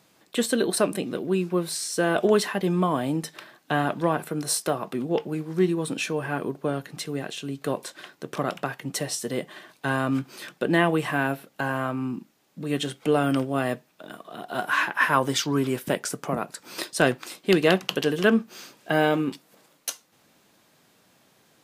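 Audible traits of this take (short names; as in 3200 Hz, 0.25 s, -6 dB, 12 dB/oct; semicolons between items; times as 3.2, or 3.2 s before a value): noise floor -62 dBFS; spectral tilt -4.5 dB/oct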